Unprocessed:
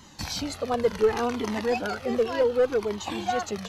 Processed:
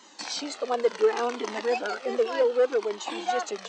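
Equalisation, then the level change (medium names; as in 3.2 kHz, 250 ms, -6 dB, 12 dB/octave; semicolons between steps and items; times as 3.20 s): high-pass 300 Hz 24 dB/octave; brick-wall FIR low-pass 9.1 kHz; 0.0 dB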